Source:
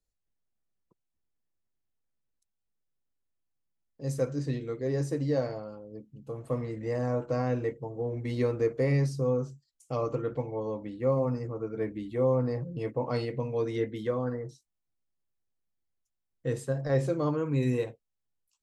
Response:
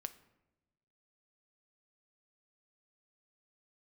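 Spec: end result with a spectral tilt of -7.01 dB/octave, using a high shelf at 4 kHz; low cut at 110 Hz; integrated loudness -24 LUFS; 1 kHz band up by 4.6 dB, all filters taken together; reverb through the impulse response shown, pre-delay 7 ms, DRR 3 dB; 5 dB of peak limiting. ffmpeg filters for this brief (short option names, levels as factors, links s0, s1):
-filter_complex "[0:a]highpass=110,equalizer=f=1000:t=o:g=6,highshelf=f=4000:g=-5,alimiter=limit=0.1:level=0:latency=1,asplit=2[s0][s1];[1:a]atrim=start_sample=2205,adelay=7[s2];[s1][s2]afir=irnorm=-1:irlink=0,volume=1[s3];[s0][s3]amix=inputs=2:normalize=0,volume=2"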